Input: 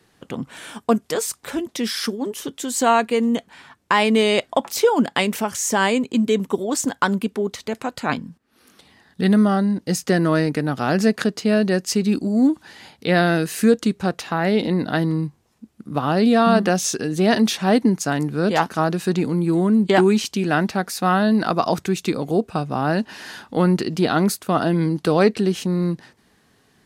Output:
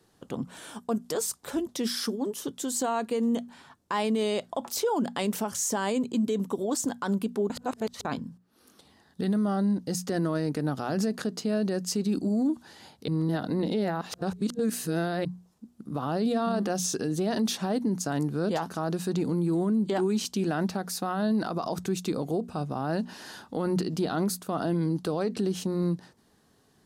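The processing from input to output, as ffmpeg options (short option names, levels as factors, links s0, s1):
-filter_complex "[0:a]asplit=5[s0][s1][s2][s3][s4];[s0]atrim=end=7.502[s5];[s1]atrim=start=7.498:end=8.052,asetpts=PTS-STARTPTS,areverse[s6];[s2]atrim=start=8.048:end=13.082[s7];[s3]atrim=start=13.078:end=15.252,asetpts=PTS-STARTPTS,areverse[s8];[s4]atrim=start=15.248[s9];[s5][s6]acrossfade=d=0.004:c1=hsin:c2=hsin[s10];[s10][s7]acrossfade=d=0.004:c1=hsin:c2=hsin[s11];[s11][s8]acrossfade=d=0.004:c1=hsin:c2=hsin[s12];[s12][s9]acrossfade=d=0.004:c1=hsin:c2=hsin,equalizer=f=2200:w=1.3:g=-8.5,bandreject=f=60:t=h:w=6,bandreject=f=120:t=h:w=6,bandreject=f=180:t=h:w=6,bandreject=f=240:t=h:w=6,alimiter=limit=0.168:level=0:latency=1:release=55,volume=0.631"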